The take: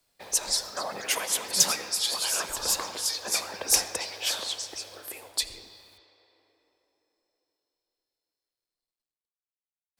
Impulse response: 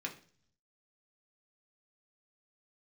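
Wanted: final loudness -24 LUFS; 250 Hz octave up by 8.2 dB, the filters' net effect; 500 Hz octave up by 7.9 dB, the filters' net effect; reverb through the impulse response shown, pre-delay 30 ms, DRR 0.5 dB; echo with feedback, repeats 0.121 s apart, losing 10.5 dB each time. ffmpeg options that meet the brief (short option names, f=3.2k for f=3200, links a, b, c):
-filter_complex "[0:a]equalizer=f=250:t=o:g=8.5,equalizer=f=500:t=o:g=7.5,aecho=1:1:121|242|363:0.299|0.0896|0.0269,asplit=2[a][b];[1:a]atrim=start_sample=2205,adelay=30[c];[b][c]afir=irnorm=-1:irlink=0,volume=-1.5dB[d];[a][d]amix=inputs=2:normalize=0,volume=0.5dB"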